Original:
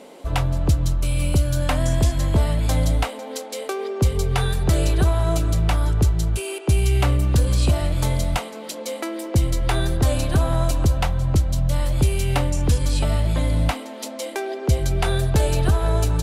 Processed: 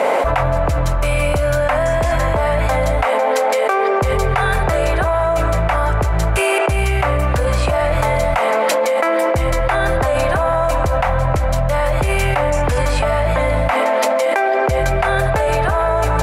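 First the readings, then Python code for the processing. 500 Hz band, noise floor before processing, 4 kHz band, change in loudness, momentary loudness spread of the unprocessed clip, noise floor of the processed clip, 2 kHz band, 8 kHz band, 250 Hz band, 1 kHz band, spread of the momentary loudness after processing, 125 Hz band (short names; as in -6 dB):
+12.0 dB, -35 dBFS, +2.0 dB, +5.0 dB, 9 LU, -17 dBFS, +13.0 dB, +1.0 dB, +0.5 dB, +13.5 dB, 2 LU, -0.5 dB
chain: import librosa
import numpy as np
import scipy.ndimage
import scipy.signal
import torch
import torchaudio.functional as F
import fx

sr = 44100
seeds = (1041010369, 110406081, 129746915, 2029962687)

y = fx.band_shelf(x, sr, hz=1100.0, db=15.5, octaves=2.6)
y = fx.env_flatten(y, sr, amount_pct=100)
y = F.gain(torch.from_numpy(y), -9.5).numpy()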